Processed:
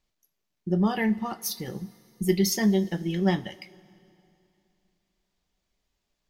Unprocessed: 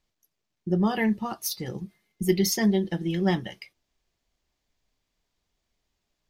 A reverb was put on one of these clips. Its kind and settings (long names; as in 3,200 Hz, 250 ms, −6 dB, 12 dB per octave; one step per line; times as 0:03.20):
coupled-rooms reverb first 0.27 s, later 2.8 s, from −18 dB, DRR 12 dB
level −1 dB